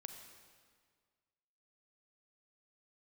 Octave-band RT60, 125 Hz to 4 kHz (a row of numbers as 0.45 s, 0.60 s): 1.9 s, 1.8 s, 1.8 s, 1.8 s, 1.6 s, 1.5 s